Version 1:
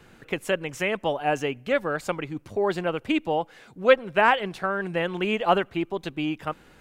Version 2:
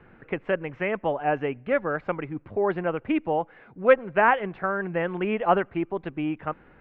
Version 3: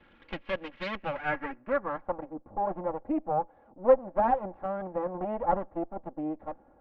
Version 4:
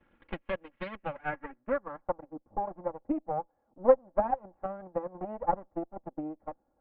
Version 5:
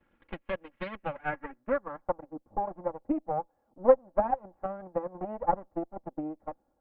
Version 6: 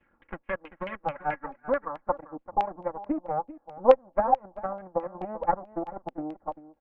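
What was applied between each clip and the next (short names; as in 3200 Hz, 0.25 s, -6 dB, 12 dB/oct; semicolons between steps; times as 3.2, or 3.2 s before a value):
LPF 2200 Hz 24 dB/oct
minimum comb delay 3.6 ms; low-pass sweep 3200 Hz -> 770 Hz, 0.91–2.22; gain -6 dB
transient shaper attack +9 dB, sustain -8 dB; air absorption 400 m; gain -6.5 dB
AGC gain up to 4.5 dB; gain -3 dB
outdoor echo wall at 67 m, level -15 dB; LFO low-pass saw down 4.6 Hz 820–2800 Hz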